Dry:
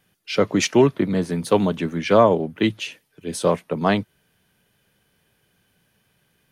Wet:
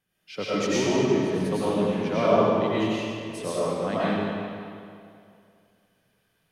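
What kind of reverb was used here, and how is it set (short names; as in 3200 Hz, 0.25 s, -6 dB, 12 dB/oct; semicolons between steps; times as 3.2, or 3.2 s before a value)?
digital reverb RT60 2.4 s, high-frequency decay 0.85×, pre-delay 65 ms, DRR -10 dB; gain -14.5 dB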